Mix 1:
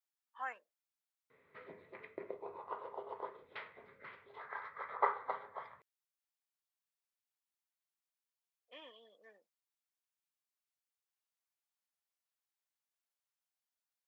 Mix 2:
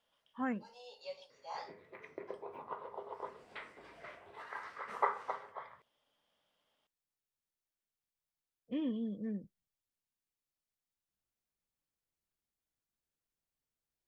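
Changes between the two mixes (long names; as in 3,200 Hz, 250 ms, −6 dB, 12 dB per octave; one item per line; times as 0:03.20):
speech: remove high-pass filter 710 Hz 24 dB per octave
first sound: unmuted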